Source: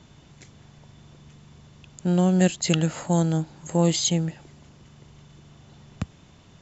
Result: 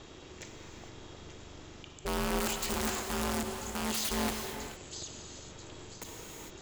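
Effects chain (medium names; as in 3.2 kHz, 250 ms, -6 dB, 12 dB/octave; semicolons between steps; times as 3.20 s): peaking EQ 120 Hz -5 dB 2.5 oct; in parallel at +2 dB: peak limiter -16.5 dBFS, peak gain reduction 8.5 dB; on the sum: feedback echo behind a high-pass 987 ms, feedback 57%, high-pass 3.8 kHz, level -19.5 dB; reverse; compression 10:1, threshold -26 dBFS, peak gain reduction 14 dB; reverse; integer overflow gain 24.5 dB; ring modulator 220 Hz; gated-style reverb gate 480 ms flat, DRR 4 dB; endings held to a fixed fall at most 110 dB/s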